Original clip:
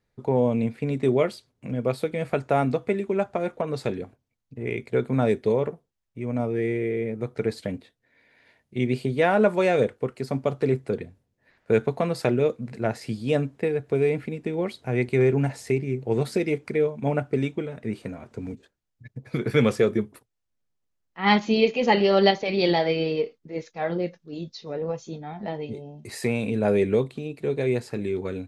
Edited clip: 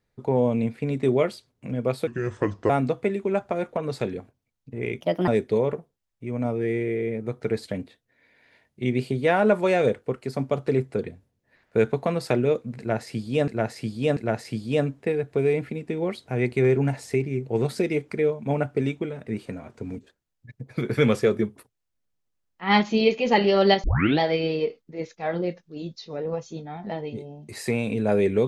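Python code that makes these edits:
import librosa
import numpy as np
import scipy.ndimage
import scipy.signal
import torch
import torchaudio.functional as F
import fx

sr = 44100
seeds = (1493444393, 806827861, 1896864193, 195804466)

y = fx.edit(x, sr, fx.speed_span(start_s=2.07, length_s=0.47, speed=0.75),
    fx.speed_span(start_s=4.85, length_s=0.37, speed=1.37),
    fx.repeat(start_s=12.73, length_s=0.69, count=3),
    fx.tape_start(start_s=22.4, length_s=0.36), tone=tone)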